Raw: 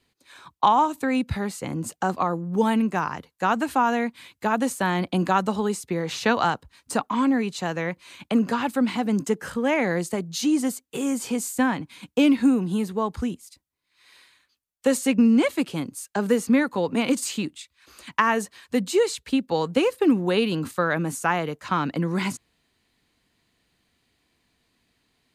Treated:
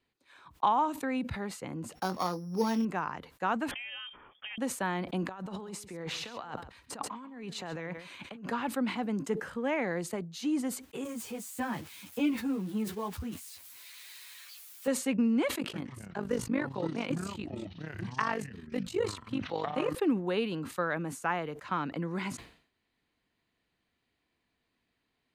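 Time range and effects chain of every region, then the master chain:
0:01.95–0:02.85: samples sorted by size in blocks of 8 samples + double-tracking delay 22 ms −9.5 dB
0:03.71–0:04.58: downward compressor, threshold −28 dBFS + voice inversion scrambler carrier 3,400 Hz
0:05.29–0:08.50: compressor whose output falls as the input rises −32 dBFS + single-tap delay 135 ms −15 dB
0:11.04–0:14.88: spike at every zero crossing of −23.5 dBFS + parametric band 91 Hz +12 dB 0.79 octaves + string-ensemble chorus
0:15.58–0:19.95: amplitude modulation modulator 49 Hz, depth 65% + delay with pitch and tempo change per echo 154 ms, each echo −7 semitones, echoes 2, each echo −6 dB
whole clip: bass and treble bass −3 dB, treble −9 dB; level that may fall only so fast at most 110 dB per second; level −8 dB

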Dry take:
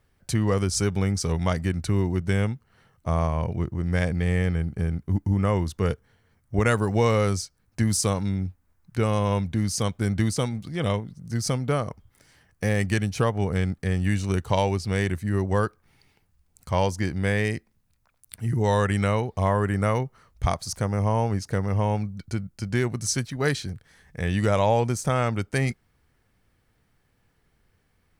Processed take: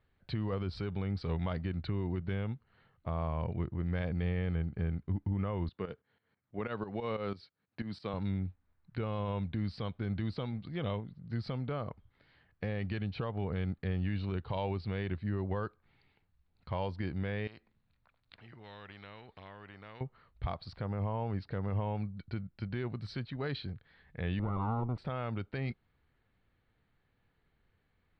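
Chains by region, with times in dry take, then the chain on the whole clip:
0:05.69–0:08.14: high-pass filter 160 Hz + shaped tremolo saw up 6.1 Hz, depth 80%
0:17.47–0:20.01: downward compressor 2 to 1, threshold −29 dBFS + every bin compressed towards the loudest bin 2 to 1
0:24.39–0:24.98: lower of the sound and its delayed copy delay 0.84 ms + Savitzky-Golay smoothing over 65 samples
whole clip: elliptic low-pass filter 4,200 Hz, stop band 40 dB; dynamic equaliser 1,900 Hz, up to −5 dB, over −45 dBFS, Q 2.9; brickwall limiter −19 dBFS; level −6.5 dB

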